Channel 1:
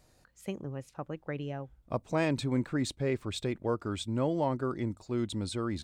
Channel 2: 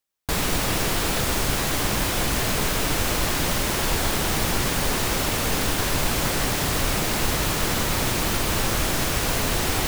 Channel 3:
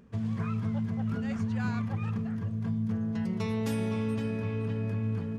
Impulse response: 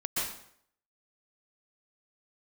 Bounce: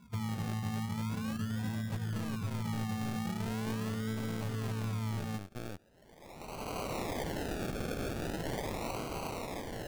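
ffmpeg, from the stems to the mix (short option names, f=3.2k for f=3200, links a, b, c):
-filter_complex "[0:a]aeval=exprs='0.168*(cos(1*acos(clip(val(0)/0.168,-1,1)))-cos(1*PI/2))+0.00841*(cos(3*acos(clip(val(0)/0.168,-1,1)))-cos(3*PI/2))+0.0596*(cos(8*acos(clip(val(0)/0.168,-1,1)))-cos(8*PI/2))':c=same,aeval=exprs='val(0)*gte(abs(val(0)),0.0335)':c=same,volume=-13dB,asplit=2[a][b];[1:a]highpass=520,dynaudnorm=f=470:g=7:m=13.5dB,volume=-14.5dB[c];[2:a]lowshelf=f=230:g=4.5,volume=-1dB[d];[b]apad=whole_len=435552[e];[c][e]sidechaincompress=threshold=-59dB:ratio=12:attack=16:release=747[f];[a][f][d]amix=inputs=3:normalize=0,afftdn=nr=13:nf=-44,acrusher=samples=35:mix=1:aa=0.000001:lfo=1:lforange=21:lforate=0.41,acompressor=threshold=-36dB:ratio=2.5"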